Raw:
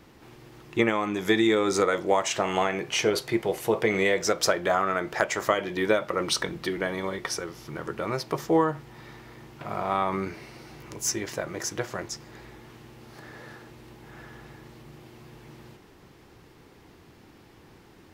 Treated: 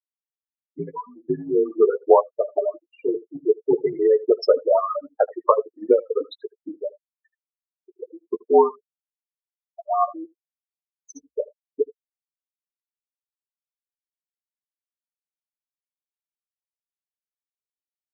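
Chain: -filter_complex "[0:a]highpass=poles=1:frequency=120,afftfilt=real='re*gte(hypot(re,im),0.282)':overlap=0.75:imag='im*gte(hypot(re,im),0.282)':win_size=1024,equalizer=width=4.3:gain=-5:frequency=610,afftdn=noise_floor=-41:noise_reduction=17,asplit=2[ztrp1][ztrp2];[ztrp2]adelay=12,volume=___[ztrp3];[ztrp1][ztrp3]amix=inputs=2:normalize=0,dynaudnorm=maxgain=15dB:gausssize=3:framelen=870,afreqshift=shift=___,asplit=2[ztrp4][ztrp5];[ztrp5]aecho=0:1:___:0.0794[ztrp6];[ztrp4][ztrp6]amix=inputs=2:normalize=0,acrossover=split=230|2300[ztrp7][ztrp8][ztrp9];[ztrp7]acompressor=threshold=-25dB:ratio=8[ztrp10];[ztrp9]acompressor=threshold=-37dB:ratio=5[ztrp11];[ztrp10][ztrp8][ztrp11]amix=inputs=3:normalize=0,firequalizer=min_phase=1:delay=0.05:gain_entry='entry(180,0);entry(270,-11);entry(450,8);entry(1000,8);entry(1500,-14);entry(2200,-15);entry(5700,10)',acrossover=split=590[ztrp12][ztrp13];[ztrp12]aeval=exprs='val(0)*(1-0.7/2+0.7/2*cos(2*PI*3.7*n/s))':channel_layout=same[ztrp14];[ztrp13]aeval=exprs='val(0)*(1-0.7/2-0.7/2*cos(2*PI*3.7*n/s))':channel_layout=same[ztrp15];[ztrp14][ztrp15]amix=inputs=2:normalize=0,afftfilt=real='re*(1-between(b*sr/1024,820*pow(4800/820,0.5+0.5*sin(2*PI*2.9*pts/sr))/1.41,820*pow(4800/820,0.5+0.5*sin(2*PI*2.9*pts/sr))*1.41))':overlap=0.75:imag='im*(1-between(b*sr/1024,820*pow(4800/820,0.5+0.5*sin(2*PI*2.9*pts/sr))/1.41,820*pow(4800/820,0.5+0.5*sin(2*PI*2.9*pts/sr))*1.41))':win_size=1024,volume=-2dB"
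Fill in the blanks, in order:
-10dB, -63, 79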